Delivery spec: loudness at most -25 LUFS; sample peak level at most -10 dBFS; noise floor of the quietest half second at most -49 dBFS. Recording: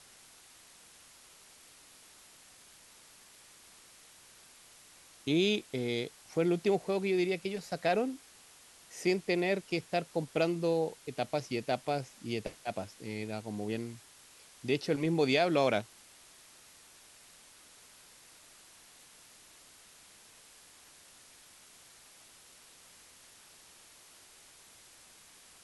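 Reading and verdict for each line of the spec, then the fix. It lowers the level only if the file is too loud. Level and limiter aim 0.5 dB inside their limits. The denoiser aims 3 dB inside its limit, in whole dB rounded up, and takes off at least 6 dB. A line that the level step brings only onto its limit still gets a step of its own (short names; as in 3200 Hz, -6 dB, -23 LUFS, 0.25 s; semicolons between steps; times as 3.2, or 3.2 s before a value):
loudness -32.5 LUFS: OK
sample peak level -13.5 dBFS: OK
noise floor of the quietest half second -58 dBFS: OK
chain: none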